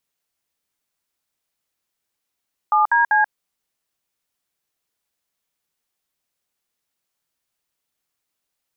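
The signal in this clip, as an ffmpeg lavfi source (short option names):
-f lavfi -i "aevalsrc='0.168*clip(min(mod(t,0.195),0.134-mod(t,0.195))/0.002,0,1)*(eq(floor(t/0.195),0)*(sin(2*PI*852*mod(t,0.195))+sin(2*PI*1209*mod(t,0.195)))+eq(floor(t/0.195),1)*(sin(2*PI*941*mod(t,0.195))+sin(2*PI*1633*mod(t,0.195)))+eq(floor(t/0.195),2)*(sin(2*PI*852*mod(t,0.195))+sin(2*PI*1633*mod(t,0.195))))':d=0.585:s=44100"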